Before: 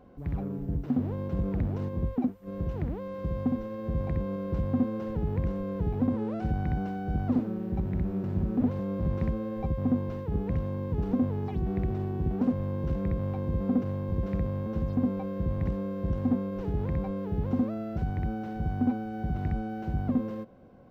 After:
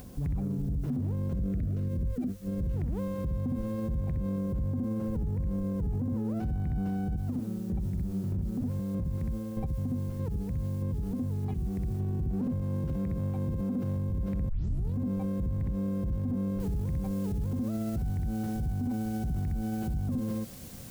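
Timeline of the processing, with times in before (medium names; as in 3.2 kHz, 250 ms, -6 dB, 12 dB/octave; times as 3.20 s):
1.34–2.77 s: Butterworth band-stop 900 Hz, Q 2.1
4.38–6.39 s: treble shelf 2.7 kHz -9 dB
7.07–12.00 s: square tremolo 1.6 Hz, depth 65%, duty 15%
12.61–13.97 s: high-pass 150 Hz 6 dB/octave
14.49 s: tape start 0.46 s
16.60 s: noise floor step -63 dB -53 dB
whole clip: tone controls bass +12 dB, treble +4 dB; peak limiter -25 dBFS; upward compressor, threshold -44 dBFS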